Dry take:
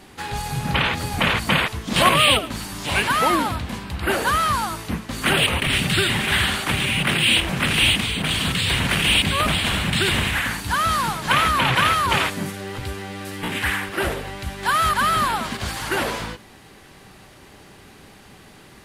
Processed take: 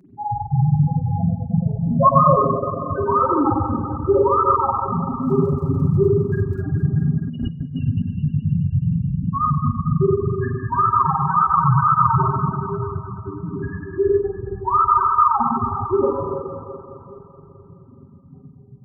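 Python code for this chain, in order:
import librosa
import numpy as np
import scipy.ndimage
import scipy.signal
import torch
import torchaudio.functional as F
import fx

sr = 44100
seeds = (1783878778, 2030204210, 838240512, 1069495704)

y = fx.spacing_loss(x, sr, db_at_10k=42)
y = fx.spec_topn(y, sr, count=2)
y = scipy.signal.sosfilt(scipy.signal.butter(2, 84.0, 'highpass', fs=sr, output='sos'), y)
y = fx.rev_spring(y, sr, rt60_s=1.7, pass_ms=(42, 47), chirp_ms=70, drr_db=-2.0)
y = fx.dmg_crackle(y, sr, seeds[0], per_s=fx.line((5.15, 80.0), (6.63, 32.0)), level_db=-52.0, at=(5.15, 6.63), fade=0.02)
y = y + 0.71 * np.pad(y, (int(7.4 * sr / 1000.0), 0))[:len(y)]
y = fx.echo_alternate(y, sr, ms=106, hz=820.0, feedback_pct=81, wet_db=-6)
y = fx.dereverb_blind(y, sr, rt60_s=0.66)
y = fx.over_compress(y, sr, threshold_db=-35.0, ratio=-1.0, at=(7.27, 7.81), fade=0.02)
y = fx.peak_eq(y, sr, hz=3300.0, db=-8.0, octaves=0.51)
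y = F.gain(torch.from_numpy(y), 8.5).numpy()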